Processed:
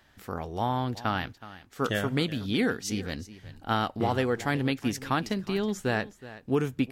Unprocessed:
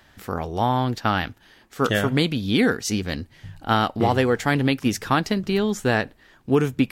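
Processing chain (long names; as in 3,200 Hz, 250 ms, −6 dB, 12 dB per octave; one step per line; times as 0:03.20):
single-tap delay 371 ms −16.5 dB
level −7 dB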